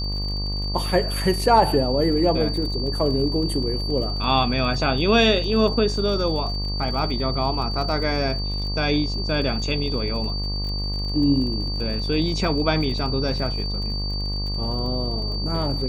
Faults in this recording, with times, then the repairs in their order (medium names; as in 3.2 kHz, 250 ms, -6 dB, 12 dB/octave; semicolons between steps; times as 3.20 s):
buzz 50 Hz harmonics 24 -27 dBFS
crackle 46 per s -32 dBFS
whine 4.6 kHz -29 dBFS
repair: de-click; band-stop 4.6 kHz, Q 30; de-hum 50 Hz, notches 24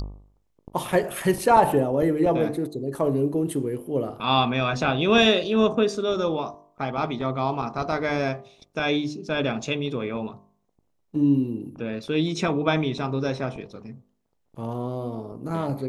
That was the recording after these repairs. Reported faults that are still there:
nothing left